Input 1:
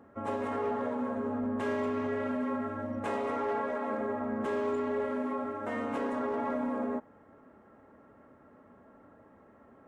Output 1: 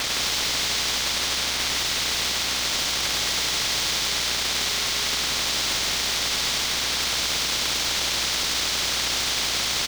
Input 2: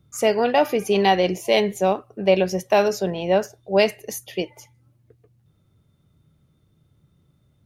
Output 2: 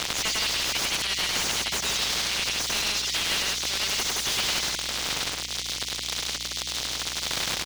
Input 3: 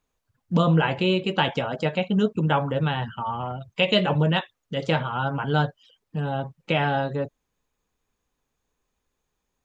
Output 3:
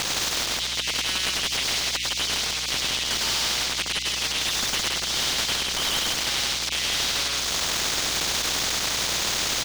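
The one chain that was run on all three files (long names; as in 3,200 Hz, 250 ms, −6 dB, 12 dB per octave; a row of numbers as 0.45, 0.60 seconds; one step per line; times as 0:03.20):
spike at every zero crossing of −21.5 dBFS
reverb reduction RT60 0.53 s
Butterworth high-pass 2,000 Hz 96 dB per octave
flat-topped bell 4,500 Hz +13 dB 1.3 octaves
volume swells 451 ms
downward compressor 6 to 1, threshold −34 dBFS
wave folding −33.5 dBFS
mains hum 60 Hz, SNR 30 dB
high-frequency loss of the air 150 metres
on a send: loudspeakers that aren't time-aligned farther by 35 metres −2 dB, 57 metres −3 dB
on the sum: every bin compressed towards the loudest bin 2 to 1
normalise the peak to −12 dBFS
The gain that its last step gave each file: +19.0, +18.5, +17.0 decibels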